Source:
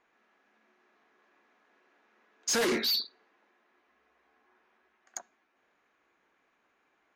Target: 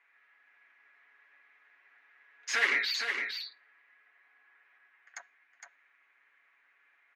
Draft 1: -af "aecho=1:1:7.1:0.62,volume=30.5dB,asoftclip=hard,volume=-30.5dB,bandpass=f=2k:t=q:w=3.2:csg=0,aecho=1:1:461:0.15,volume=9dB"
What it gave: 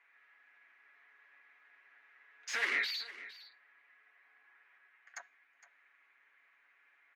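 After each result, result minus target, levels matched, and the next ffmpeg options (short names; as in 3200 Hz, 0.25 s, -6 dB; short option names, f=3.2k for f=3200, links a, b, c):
overloaded stage: distortion +28 dB; echo-to-direct -10.5 dB
-af "aecho=1:1:7.1:0.62,volume=20dB,asoftclip=hard,volume=-20dB,bandpass=f=2k:t=q:w=3.2:csg=0,aecho=1:1:461:0.15,volume=9dB"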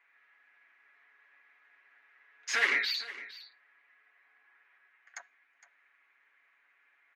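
echo-to-direct -10.5 dB
-af "aecho=1:1:7.1:0.62,volume=20dB,asoftclip=hard,volume=-20dB,bandpass=f=2k:t=q:w=3.2:csg=0,aecho=1:1:461:0.501,volume=9dB"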